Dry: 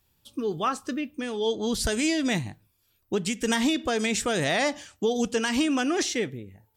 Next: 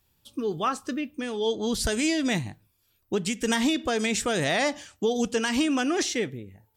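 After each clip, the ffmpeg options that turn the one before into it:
-af anull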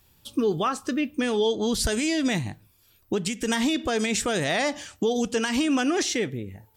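-af "alimiter=limit=-24dB:level=0:latency=1:release=356,volume=8.5dB"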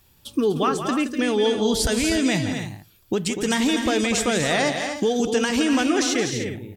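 -af "aecho=1:1:171|246|303:0.316|0.398|0.237,volume=2.5dB"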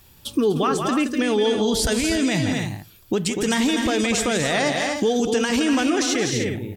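-filter_complex "[0:a]asplit=2[a][b];[b]acompressor=threshold=-29dB:ratio=6,volume=0.5dB[c];[a][c]amix=inputs=2:normalize=0,alimiter=limit=-12dB:level=0:latency=1:release=38"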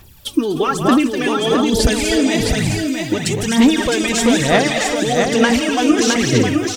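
-filter_complex "[0:a]aphaser=in_gain=1:out_gain=1:delay=3.3:decay=0.65:speed=1.1:type=sinusoidal,acrusher=bits=8:mix=0:aa=0.5,asplit=2[a][b];[b]aecho=0:1:661:0.596[c];[a][c]amix=inputs=2:normalize=0,volume=1.5dB"

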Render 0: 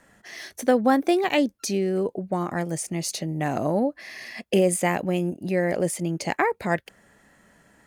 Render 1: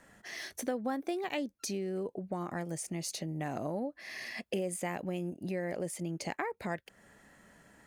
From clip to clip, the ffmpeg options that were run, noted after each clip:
-af "acompressor=threshold=-35dB:ratio=2.5,volume=-2.5dB"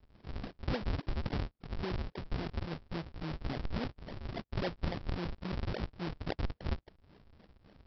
-af "equalizer=f=200:t=o:w=2.8:g=-2.5,aresample=11025,acrusher=samples=41:mix=1:aa=0.000001:lfo=1:lforange=65.6:lforate=3.6,aresample=44100,volume=1.5dB"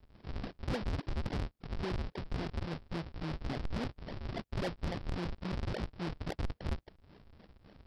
-af "asoftclip=type=tanh:threshold=-31dB,volume=2dB"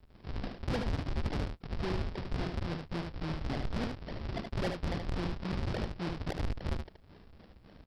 -af "aecho=1:1:75:0.531,volume=1.5dB"

